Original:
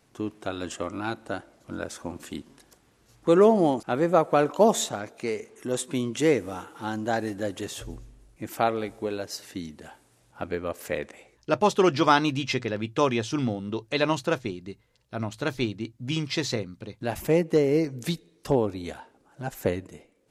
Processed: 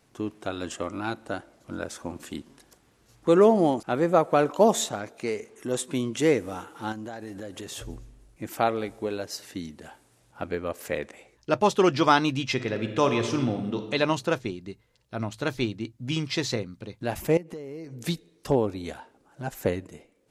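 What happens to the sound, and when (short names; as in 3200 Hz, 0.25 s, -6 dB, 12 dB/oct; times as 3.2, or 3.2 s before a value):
6.92–7.72 compressor 5:1, threshold -34 dBFS
12.53–13.83 reverb throw, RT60 1.2 s, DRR 6 dB
17.37–18.06 compressor, threshold -36 dBFS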